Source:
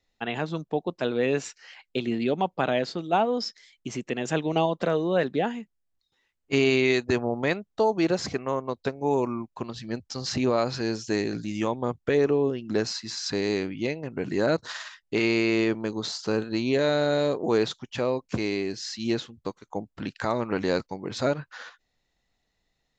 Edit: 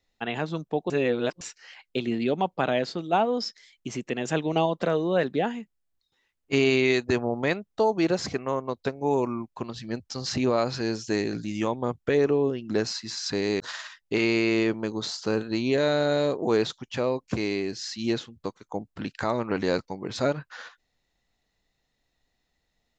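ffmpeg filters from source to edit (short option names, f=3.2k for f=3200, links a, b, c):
-filter_complex "[0:a]asplit=4[a][b][c][d];[a]atrim=end=0.902[e];[b]atrim=start=0.898:end=1.412,asetpts=PTS-STARTPTS,areverse[f];[c]atrim=start=1.408:end=13.602[g];[d]atrim=start=14.608[h];[e][f]acrossfade=d=0.004:c1=hsin:c2=hsin[i];[i][g]acrossfade=d=0.004:c1=hsin:c2=hsin[j];[j][h]acrossfade=d=0.004:c1=hsin:c2=hsin"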